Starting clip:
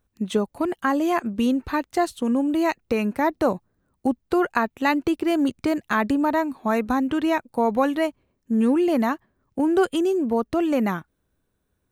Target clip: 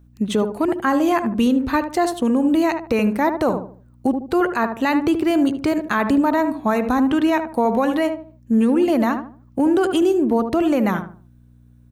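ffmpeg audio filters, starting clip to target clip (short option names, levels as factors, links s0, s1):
-filter_complex "[0:a]aeval=exprs='val(0)+0.00224*(sin(2*PI*60*n/s)+sin(2*PI*2*60*n/s)/2+sin(2*PI*3*60*n/s)/3+sin(2*PI*4*60*n/s)/4+sin(2*PI*5*60*n/s)/5)':c=same,asplit=2[s0][s1];[s1]adelay=75,lowpass=f=1100:p=1,volume=0.398,asplit=2[s2][s3];[s3]adelay=75,lowpass=f=1100:p=1,volume=0.35,asplit=2[s4][s5];[s5]adelay=75,lowpass=f=1100:p=1,volume=0.35,asplit=2[s6][s7];[s7]adelay=75,lowpass=f=1100:p=1,volume=0.35[s8];[s0][s2][s4][s6][s8]amix=inputs=5:normalize=0,alimiter=level_in=4.73:limit=0.891:release=50:level=0:latency=1,volume=0.376"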